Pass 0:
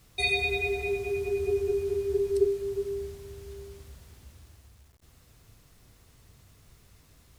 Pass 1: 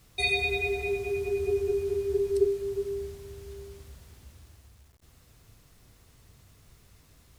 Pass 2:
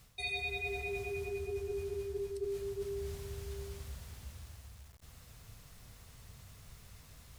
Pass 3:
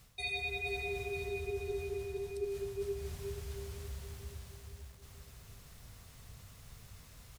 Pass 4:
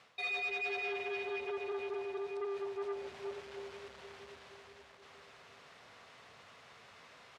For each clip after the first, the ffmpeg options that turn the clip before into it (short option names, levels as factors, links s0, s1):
-af anull
-af "equalizer=f=330:t=o:w=0.68:g=-9,areverse,acompressor=threshold=0.0112:ratio=6,areverse,volume=1.41"
-af "aecho=1:1:474|948|1422|1896|2370|2844:0.355|0.185|0.0959|0.0499|0.0259|0.0135"
-af "asoftclip=type=tanh:threshold=0.0119,highpass=460,lowpass=2900,volume=2.51"